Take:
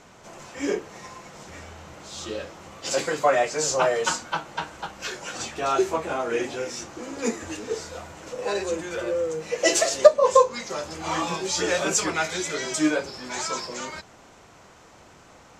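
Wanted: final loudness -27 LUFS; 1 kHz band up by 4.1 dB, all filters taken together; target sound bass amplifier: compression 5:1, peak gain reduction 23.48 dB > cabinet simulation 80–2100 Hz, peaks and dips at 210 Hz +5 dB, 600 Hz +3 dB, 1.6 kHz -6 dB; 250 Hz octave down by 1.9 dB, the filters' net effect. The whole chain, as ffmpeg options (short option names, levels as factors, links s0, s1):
-af "equalizer=f=250:t=o:g=-4.5,equalizer=f=1000:t=o:g=5.5,acompressor=threshold=0.0251:ratio=5,highpass=f=80:w=0.5412,highpass=f=80:w=1.3066,equalizer=f=210:t=q:w=4:g=5,equalizer=f=600:t=q:w=4:g=3,equalizer=f=1600:t=q:w=4:g=-6,lowpass=f=2100:w=0.5412,lowpass=f=2100:w=1.3066,volume=2.99"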